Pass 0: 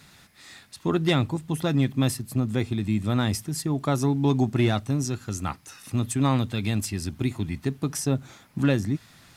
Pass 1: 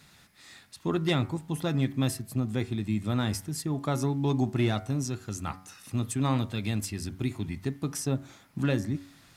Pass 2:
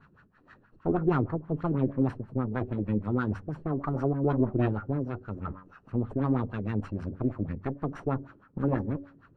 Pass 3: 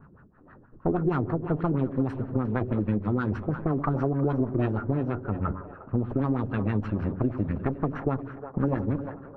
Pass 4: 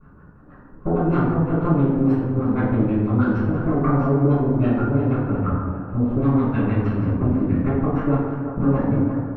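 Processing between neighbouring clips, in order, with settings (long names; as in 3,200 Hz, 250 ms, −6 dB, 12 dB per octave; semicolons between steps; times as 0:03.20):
hum removal 93.58 Hz, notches 25; level −4 dB
lower of the sound and its delayed copy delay 0.7 ms; auto-filter low-pass sine 6.3 Hz 350–1,600 Hz
echo with a time of its own for lows and highs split 420 Hz, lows 99 ms, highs 353 ms, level −14.5 dB; low-pass that shuts in the quiet parts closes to 880 Hz, open at −21 dBFS; downward compressor, threshold −30 dBFS, peak gain reduction 11 dB; level +8 dB
convolution reverb RT60 1.2 s, pre-delay 3 ms, DRR −10.5 dB; level −9 dB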